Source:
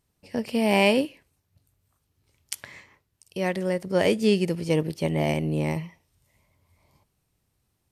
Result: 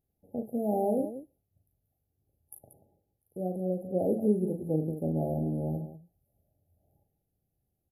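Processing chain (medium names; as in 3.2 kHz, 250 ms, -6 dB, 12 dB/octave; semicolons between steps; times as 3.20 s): FFT band-reject 850–10000 Hz; 3.47–5.68 s: dynamic bell 260 Hz, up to +6 dB, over -39 dBFS, Q 3.8; loudspeakers at several distances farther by 13 m -6 dB, 63 m -11 dB; trim -7.5 dB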